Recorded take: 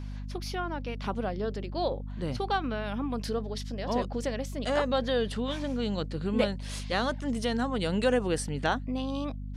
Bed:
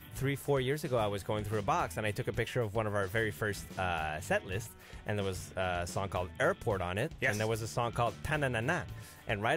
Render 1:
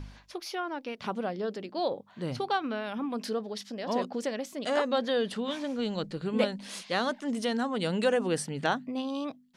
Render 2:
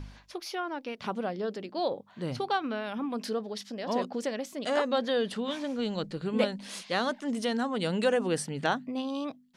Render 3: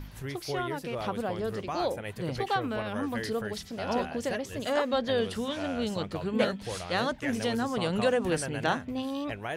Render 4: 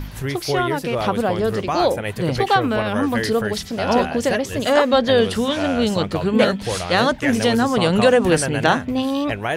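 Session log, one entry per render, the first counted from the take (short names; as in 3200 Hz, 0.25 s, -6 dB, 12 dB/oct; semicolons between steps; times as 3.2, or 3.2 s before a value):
de-hum 50 Hz, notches 5
nothing audible
add bed -4.5 dB
gain +12 dB; limiter -3 dBFS, peak gain reduction 2.5 dB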